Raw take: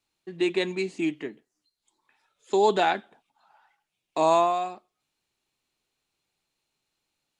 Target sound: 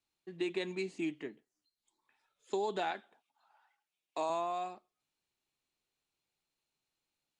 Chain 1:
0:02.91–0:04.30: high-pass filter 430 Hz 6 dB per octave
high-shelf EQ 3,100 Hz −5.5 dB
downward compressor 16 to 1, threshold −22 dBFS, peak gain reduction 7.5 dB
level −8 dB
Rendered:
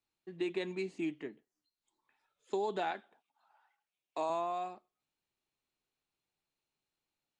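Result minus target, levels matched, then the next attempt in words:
8,000 Hz band −4.5 dB
0:02.91–0:04.30: high-pass filter 430 Hz 6 dB per octave
downward compressor 16 to 1, threshold −22 dBFS, peak gain reduction 7.5 dB
level −8 dB

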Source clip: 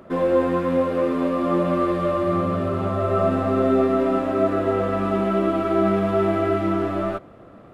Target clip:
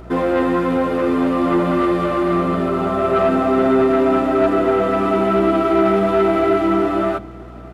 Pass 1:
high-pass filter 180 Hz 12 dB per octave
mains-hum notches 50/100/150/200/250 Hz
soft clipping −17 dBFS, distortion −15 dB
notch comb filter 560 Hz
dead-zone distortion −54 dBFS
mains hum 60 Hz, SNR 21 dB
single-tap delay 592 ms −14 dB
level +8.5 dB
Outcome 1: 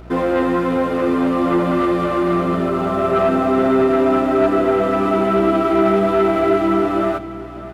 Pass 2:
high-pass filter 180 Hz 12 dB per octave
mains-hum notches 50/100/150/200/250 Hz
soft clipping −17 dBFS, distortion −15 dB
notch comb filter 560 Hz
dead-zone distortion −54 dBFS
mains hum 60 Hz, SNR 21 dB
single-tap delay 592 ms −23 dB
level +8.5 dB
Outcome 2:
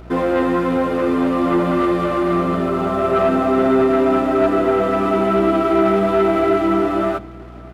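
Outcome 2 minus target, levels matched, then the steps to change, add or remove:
dead-zone distortion: distortion +9 dB
change: dead-zone distortion −63 dBFS

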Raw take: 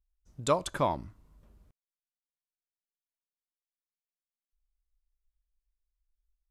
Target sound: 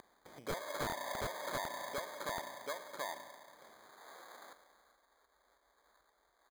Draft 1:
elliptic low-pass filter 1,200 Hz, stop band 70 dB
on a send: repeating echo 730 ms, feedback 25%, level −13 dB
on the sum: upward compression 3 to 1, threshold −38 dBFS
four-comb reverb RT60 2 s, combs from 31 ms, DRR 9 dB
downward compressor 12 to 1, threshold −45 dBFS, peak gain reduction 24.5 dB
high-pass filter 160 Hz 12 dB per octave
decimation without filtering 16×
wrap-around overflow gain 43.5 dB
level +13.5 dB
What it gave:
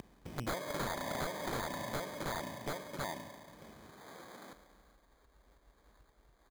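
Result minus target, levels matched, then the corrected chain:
125 Hz band +7.0 dB
elliptic low-pass filter 1,200 Hz, stop band 70 dB
on a send: repeating echo 730 ms, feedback 25%, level −13 dB
on the sum: upward compression 3 to 1, threshold −38 dBFS
four-comb reverb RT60 2 s, combs from 31 ms, DRR 9 dB
downward compressor 12 to 1, threshold −45 dBFS, peak gain reduction 24.5 dB
high-pass filter 610 Hz 12 dB per octave
decimation without filtering 16×
wrap-around overflow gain 43.5 dB
level +13.5 dB

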